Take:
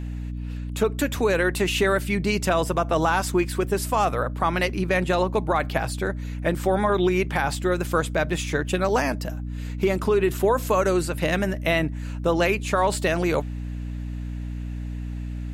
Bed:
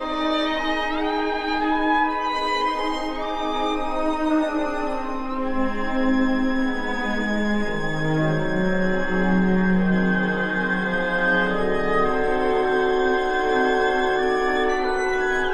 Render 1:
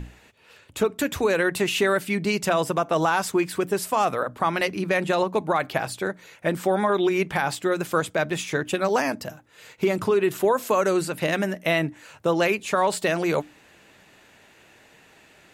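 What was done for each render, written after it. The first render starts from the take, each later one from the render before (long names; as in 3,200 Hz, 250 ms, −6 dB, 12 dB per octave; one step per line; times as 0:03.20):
mains-hum notches 60/120/180/240/300 Hz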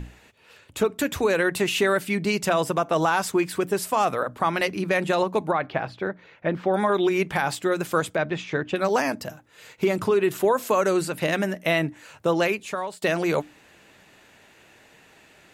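0:05.51–0:06.74: high-frequency loss of the air 270 metres
0:08.16–0:08.76: high-frequency loss of the air 180 metres
0:12.37–0:13.02: fade out, to −20.5 dB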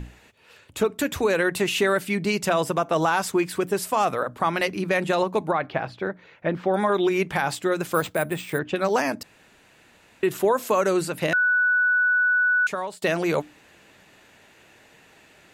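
0:07.94–0:08.59: bad sample-rate conversion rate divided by 4×, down none, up hold
0:09.23–0:10.23: fill with room tone
0:11.33–0:12.67: beep over 1,480 Hz −17 dBFS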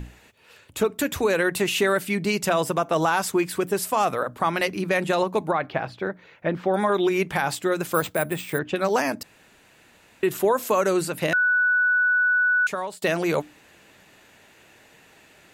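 high-shelf EQ 11,000 Hz +6.5 dB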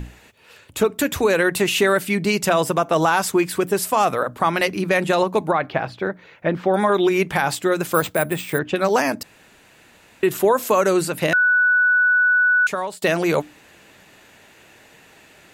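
level +4 dB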